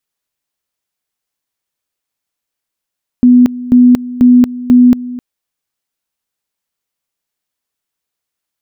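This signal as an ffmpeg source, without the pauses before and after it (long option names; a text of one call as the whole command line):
ffmpeg -f lavfi -i "aevalsrc='pow(10,(-2-17.5*gte(mod(t,0.49),0.23))/20)*sin(2*PI*247*t)':duration=1.96:sample_rate=44100" out.wav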